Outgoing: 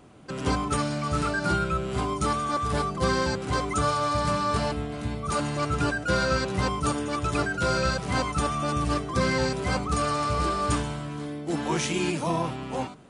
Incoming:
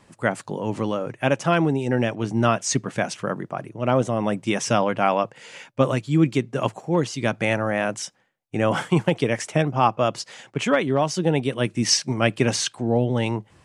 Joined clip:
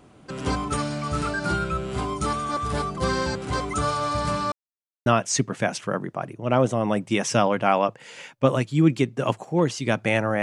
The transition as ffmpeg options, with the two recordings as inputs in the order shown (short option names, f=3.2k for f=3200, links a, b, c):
-filter_complex "[0:a]apad=whole_dur=10.42,atrim=end=10.42,asplit=2[a][b];[a]atrim=end=4.52,asetpts=PTS-STARTPTS,afade=t=out:st=4.516:d=0.004:c=hsin[c];[b]atrim=start=4.52:end=5.06,asetpts=PTS-STARTPTS,volume=0[d];[1:a]atrim=start=2.42:end=7.78,asetpts=PTS-STARTPTS,afade=t=in:d=0.004:c=hsin[e];[c][d][e]concat=n=3:v=0:a=1"